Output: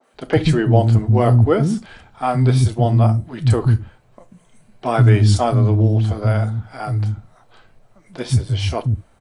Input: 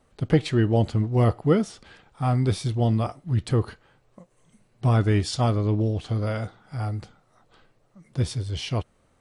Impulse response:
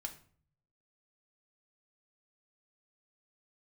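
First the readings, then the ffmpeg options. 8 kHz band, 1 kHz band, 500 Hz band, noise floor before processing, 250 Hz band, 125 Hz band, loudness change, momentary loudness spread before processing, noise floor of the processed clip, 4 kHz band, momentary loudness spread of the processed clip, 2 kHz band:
+5.5 dB, +8.5 dB, +6.5 dB, -64 dBFS, +5.0 dB, +9.0 dB, +7.5 dB, 10 LU, -55 dBFS, +4.5 dB, 11 LU, +7.0 dB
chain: -filter_complex "[0:a]adynamicequalizer=threshold=0.00355:dfrequency=3000:dqfactor=0.91:tfrequency=3000:tqfactor=0.91:attack=5:release=100:ratio=0.375:range=3:mode=cutabove:tftype=bell,acrossover=split=250|5400[s0][s1][s2];[s2]adelay=30[s3];[s0]adelay=140[s4];[s4][s1][s3]amix=inputs=3:normalize=0,asplit=2[s5][s6];[1:a]atrim=start_sample=2205,atrim=end_sample=3528[s7];[s6][s7]afir=irnorm=-1:irlink=0,volume=1.12[s8];[s5][s8]amix=inputs=2:normalize=0,volume=1.5"

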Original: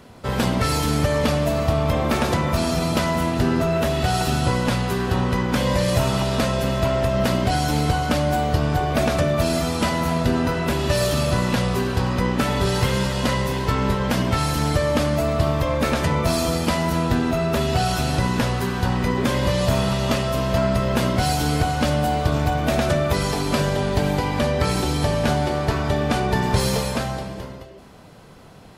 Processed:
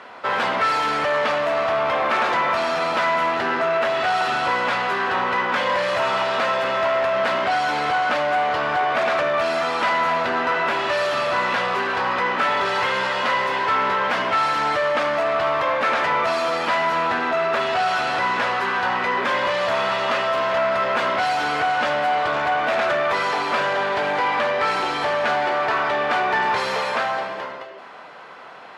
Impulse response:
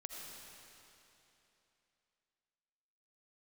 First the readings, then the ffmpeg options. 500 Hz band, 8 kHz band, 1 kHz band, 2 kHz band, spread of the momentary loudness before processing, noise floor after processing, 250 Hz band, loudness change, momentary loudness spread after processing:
+0.5 dB, -11.0 dB, +6.0 dB, +7.0 dB, 2 LU, -34 dBFS, -12.0 dB, +0.5 dB, 2 LU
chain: -filter_complex "[0:a]asplit=2[s0][s1];[s1]highpass=f=720:p=1,volume=11.2,asoftclip=type=tanh:threshold=0.398[s2];[s0][s2]amix=inputs=2:normalize=0,lowpass=f=2100:p=1,volume=0.501,bandpass=f=1500:t=q:w=0.76:csg=0"

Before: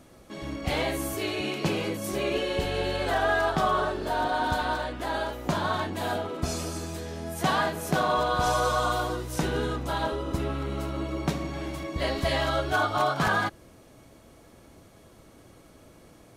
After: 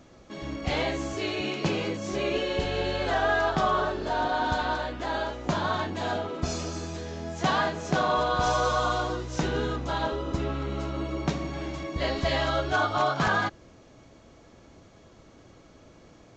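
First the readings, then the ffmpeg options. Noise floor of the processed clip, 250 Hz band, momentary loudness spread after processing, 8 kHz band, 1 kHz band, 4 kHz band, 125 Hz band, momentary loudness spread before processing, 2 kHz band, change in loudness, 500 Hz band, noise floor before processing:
-54 dBFS, 0.0 dB, 8 LU, -3.0 dB, 0.0 dB, 0.0 dB, 0.0 dB, 8 LU, 0.0 dB, 0.0 dB, 0.0 dB, -54 dBFS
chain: -af "aresample=16000,aresample=44100"

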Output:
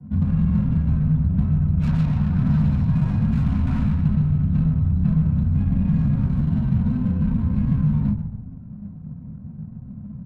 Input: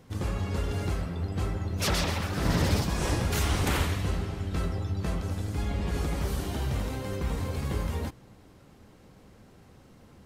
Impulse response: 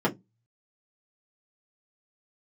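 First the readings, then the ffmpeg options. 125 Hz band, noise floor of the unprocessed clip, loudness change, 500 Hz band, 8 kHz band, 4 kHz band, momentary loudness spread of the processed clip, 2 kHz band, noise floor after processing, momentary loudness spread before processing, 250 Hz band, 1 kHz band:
+11.5 dB, -55 dBFS, +9.5 dB, -9.5 dB, under -20 dB, under -15 dB, 17 LU, no reading, -38 dBFS, 6 LU, +13.0 dB, -6.0 dB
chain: -filter_complex "[0:a]aemphasis=mode=production:type=75fm,flanger=delay=2.8:depth=9.1:regen=-70:speed=0.27:shape=triangular[s0];[1:a]atrim=start_sample=2205,asetrate=34839,aresample=44100[s1];[s0][s1]afir=irnorm=-1:irlink=0,acrossover=split=600[s2][s3];[s2]asoftclip=type=tanh:threshold=0.211[s4];[s4][s3]amix=inputs=2:normalize=0,afreqshift=-15,acompressor=threshold=0.1:ratio=3,firequalizer=gain_entry='entry(140,0);entry(210,5);entry(330,-24);entry(930,-13)':delay=0.05:min_phase=1,asplit=5[s5][s6][s7][s8][s9];[s6]adelay=139,afreqshift=-45,volume=0.335[s10];[s7]adelay=278,afreqshift=-90,volume=0.133[s11];[s8]adelay=417,afreqshift=-135,volume=0.0537[s12];[s9]adelay=556,afreqshift=-180,volume=0.0214[s13];[s5][s10][s11][s12][s13]amix=inputs=5:normalize=0,adynamicsmooth=sensitivity=6:basefreq=730,volume=1.41"

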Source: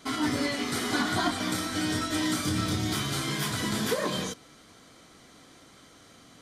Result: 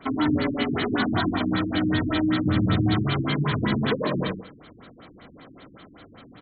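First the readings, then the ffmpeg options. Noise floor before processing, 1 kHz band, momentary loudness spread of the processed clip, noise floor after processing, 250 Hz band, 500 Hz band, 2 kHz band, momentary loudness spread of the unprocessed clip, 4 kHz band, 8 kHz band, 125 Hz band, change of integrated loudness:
-55 dBFS, +2.5 dB, 3 LU, -50 dBFS, +6.5 dB, +4.5 dB, +2.0 dB, 2 LU, -1.5 dB, under -40 dB, +8.5 dB, +4.5 dB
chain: -filter_complex "[0:a]asplit=2[s0][s1];[s1]adelay=80,lowpass=f=4200:p=1,volume=0.562,asplit=2[s2][s3];[s3]adelay=80,lowpass=f=4200:p=1,volume=0.25,asplit=2[s4][s5];[s5]adelay=80,lowpass=f=4200:p=1,volume=0.25[s6];[s0][s2][s4][s6]amix=inputs=4:normalize=0,acrossover=split=230|3000[s7][s8][s9];[s8]acompressor=threshold=0.0355:ratio=6[s10];[s7][s10][s9]amix=inputs=3:normalize=0,afftfilt=real='re*lt(b*sr/1024,350*pow(4500/350,0.5+0.5*sin(2*PI*5.2*pts/sr)))':imag='im*lt(b*sr/1024,350*pow(4500/350,0.5+0.5*sin(2*PI*5.2*pts/sr)))':win_size=1024:overlap=0.75,volume=2.24"

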